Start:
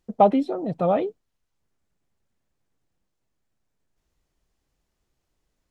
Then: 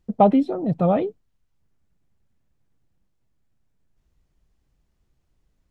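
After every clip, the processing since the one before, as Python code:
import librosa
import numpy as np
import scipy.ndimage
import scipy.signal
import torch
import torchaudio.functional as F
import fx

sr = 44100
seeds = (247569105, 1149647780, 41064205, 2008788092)

y = fx.bass_treble(x, sr, bass_db=9, treble_db=-3)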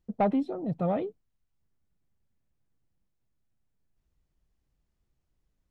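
y = 10.0 ** (-9.0 / 20.0) * np.tanh(x / 10.0 ** (-9.0 / 20.0))
y = F.gain(torch.from_numpy(y), -8.0).numpy()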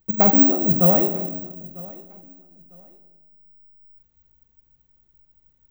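y = fx.echo_feedback(x, sr, ms=950, feedback_pct=24, wet_db=-21.5)
y = fx.room_shoebox(y, sr, seeds[0], volume_m3=830.0, walls='mixed', distance_m=0.86)
y = (np.kron(scipy.signal.resample_poly(y, 1, 2), np.eye(2)[0]) * 2)[:len(y)]
y = F.gain(torch.from_numpy(y), 7.0).numpy()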